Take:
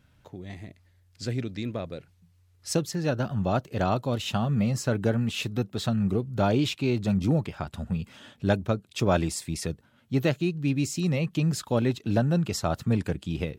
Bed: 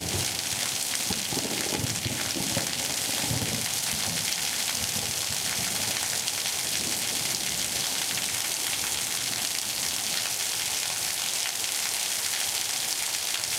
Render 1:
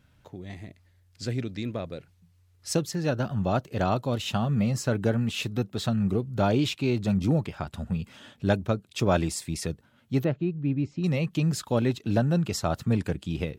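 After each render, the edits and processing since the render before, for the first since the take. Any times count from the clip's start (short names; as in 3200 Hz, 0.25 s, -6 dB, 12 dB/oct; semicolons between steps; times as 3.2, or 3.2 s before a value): 10.24–11.04 tape spacing loss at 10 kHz 42 dB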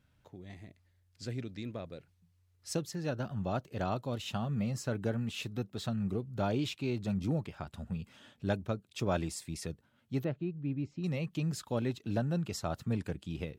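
gain -8.5 dB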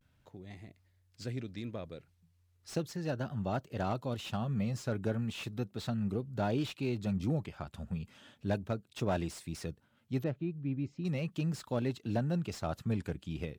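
vibrato 0.36 Hz 44 cents; slew limiter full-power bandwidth 34 Hz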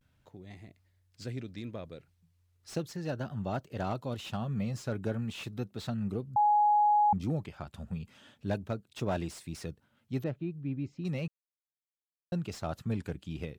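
6.36–7.13 bleep 835 Hz -21 dBFS; 11.28–12.32 mute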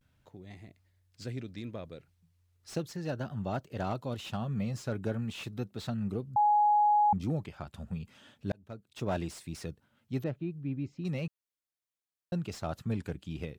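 8.52–9.13 fade in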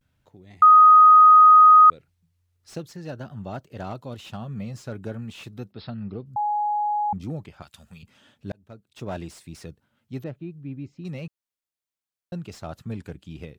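0.62–1.9 bleep 1250 Hz -8 dBFS; 5.72–6.26 brick-wall FIR low-pass 5400 Hz; 7.62–8.03 tilt shelf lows -10 dB, about 1300 Hz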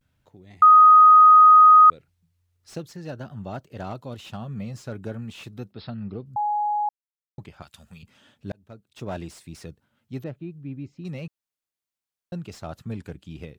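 6.89–7.38 mute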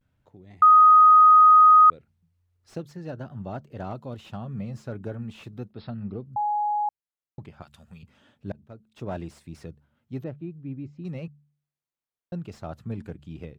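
high shelf 2400 Hz -9.5 dB; de-hum 72.93 Hz, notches 3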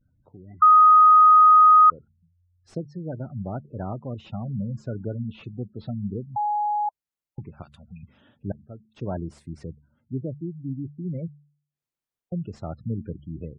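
spectral gate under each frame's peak -20 dB strong; low shelf 380 Hz +5 dB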